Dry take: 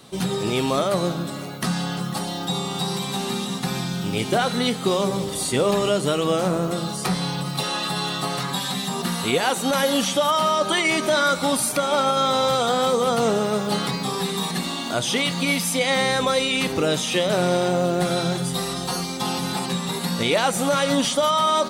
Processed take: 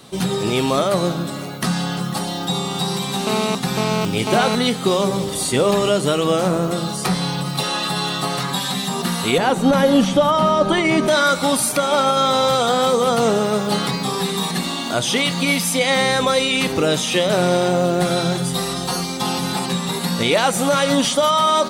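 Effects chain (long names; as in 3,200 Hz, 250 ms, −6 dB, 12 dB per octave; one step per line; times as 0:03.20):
0:03.27–0:04.55: phone interference −25 dBFS
0:09.38–0:11.08: spectral tilt −3 dB per octave
level +3.5 dB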